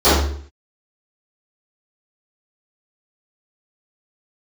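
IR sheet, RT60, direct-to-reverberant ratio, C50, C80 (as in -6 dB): 0.55 s, -20.0 dB, -0.5 dB, 5.5 dB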